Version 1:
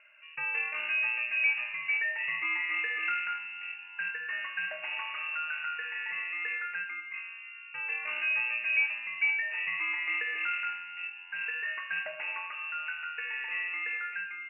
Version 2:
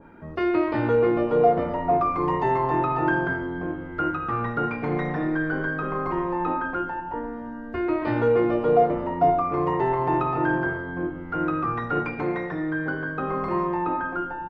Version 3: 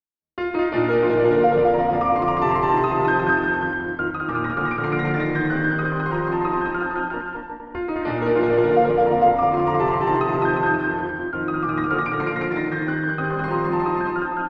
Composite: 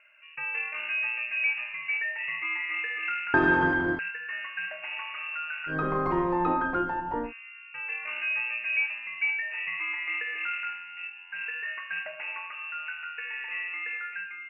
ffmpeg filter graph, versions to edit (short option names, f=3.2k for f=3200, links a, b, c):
-filter_complex "[0:a]asplit=3[a][b][c];[a]atrim=end=3.342[d];[2:a]atrim=start=3.338:end=3.992[e];[b]atrim=start=3.988:end=5.76[f];[1:a]atrim=start=5.66:end=7.33[g];[c]atrim=start=7.23[h];[d][e]acrossfade=d=0.004:c1=hsin:c2=hsin[i];[i][f]acrossfade=d=0.004:c1=hsin:c2=hsin[j];[j][g]acrossfade=d=0.1:c1=tri:c2=tri[k];[k][h]acrossfade=d=0.1:c1=tri:c2=tri"